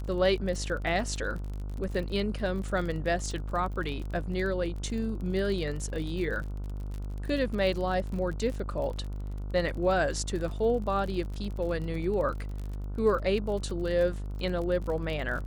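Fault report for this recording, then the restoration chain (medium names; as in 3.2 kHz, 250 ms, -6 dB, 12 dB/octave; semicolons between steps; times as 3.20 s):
buzz 50 Hz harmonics 30 -35 dBFS
crackle 34 per s -35 dBFS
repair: de-click; de-hum 50 Hz, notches 30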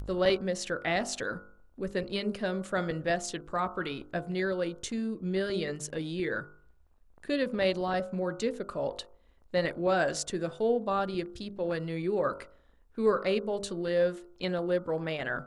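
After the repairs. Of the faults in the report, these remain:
nothing left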